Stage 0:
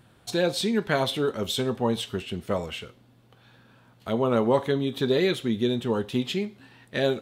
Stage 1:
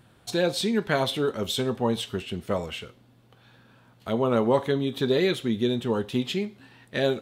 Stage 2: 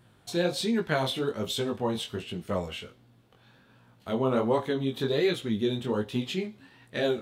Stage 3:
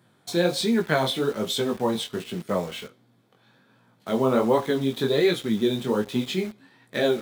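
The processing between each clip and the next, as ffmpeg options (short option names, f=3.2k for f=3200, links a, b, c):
-af anull
-af "flanger=delay=17:depth=6.2:speed=1.3"
-filter_complex "[0:a]highpass=f=130:w=0.5412,highpass=f=130:w=1.3066,bandreject=f=2.8k:w=8.5,asplit=2[a][b];[b]acrusher=bits=6:mix=0:aa=0.000001,volume=-3dB[c];[a][c]amix=inputs=2:normalize=0"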